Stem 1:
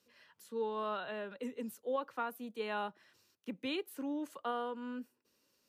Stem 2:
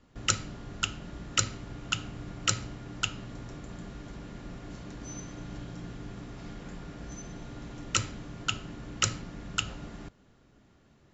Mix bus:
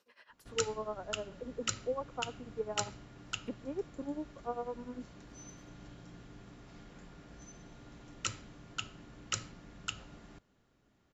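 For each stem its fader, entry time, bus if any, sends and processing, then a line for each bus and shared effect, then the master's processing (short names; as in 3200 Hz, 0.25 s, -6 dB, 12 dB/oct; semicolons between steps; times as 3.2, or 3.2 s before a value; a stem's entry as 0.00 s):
-1.0 dB, 0.00 s, no send, bell 880 Hz +10.5 dB 2.9 oct; treble ducked by the level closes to 590 Hz, closed at -35.5 dBFS; tremolo 10 Hz, depth 85%
-8.5 dB, 0.30 s, no send, dry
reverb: off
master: low shelf 340 Hz -3.5 dB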